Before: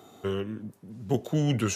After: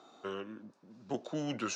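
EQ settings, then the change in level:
loudspeaker in its box 380–5,600 Hz, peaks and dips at 420 Hz −9 dB, 730 Hz −4 dB, 2,000 Hz −8 dB, 3,100 Hz −7 dB
−1.0 dB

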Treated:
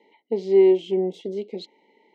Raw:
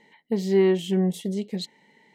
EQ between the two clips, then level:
four-pole ladder high-pass 280 Hz, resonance 40%
elliptic band-stop filter 960–2,100 Hz, stop band 40 dB
high-frequency loss of the air 180 metres
+8.5 dB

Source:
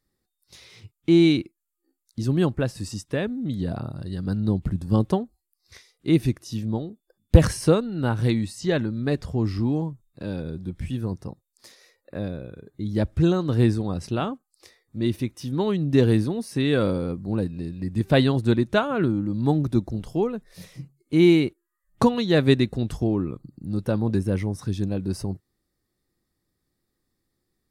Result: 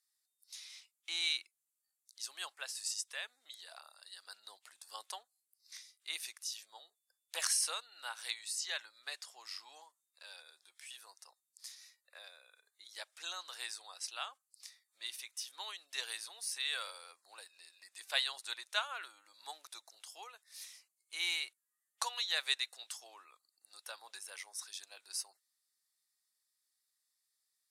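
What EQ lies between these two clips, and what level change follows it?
high-pass filter 720 Hz 24 dB per octave
low-pass filter 9,700 Hz 12 dB per octave
first difference
+3.5 dB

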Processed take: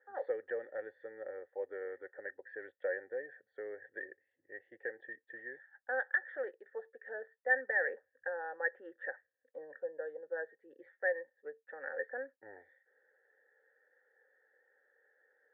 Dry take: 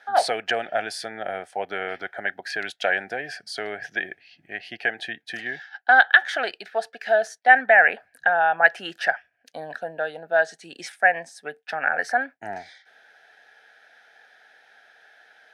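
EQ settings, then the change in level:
formant resonators in series e
high-shelf EQ 2,700 Hz −9 dB
phaser with its sweep stopped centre 670 Hz, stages 6
+2.0 dB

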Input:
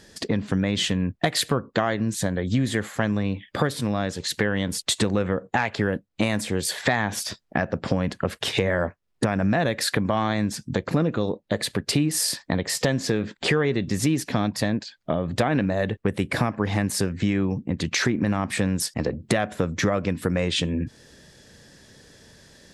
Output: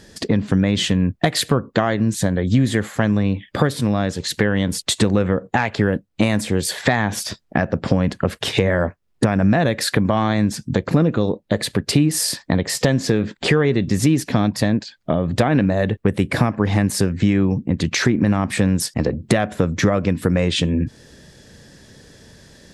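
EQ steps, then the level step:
low-shelf EQ 410 Hz +4.5 dB
+3.0 dB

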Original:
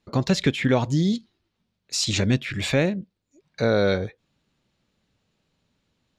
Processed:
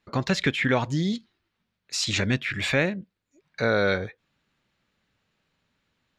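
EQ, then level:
parametric band 1,700 Hz +9 dB 1.8 octaves
−4.5 dB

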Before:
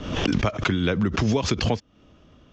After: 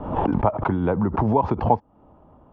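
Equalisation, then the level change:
low-pass with resonance 880 Hz, resonance Q 5.8
0.0 dB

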